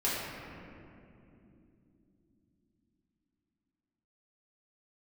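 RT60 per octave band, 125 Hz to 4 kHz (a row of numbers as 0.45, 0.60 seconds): 4.8, 5.2, 3.6, 2.3, 2.1, 1.4 seconds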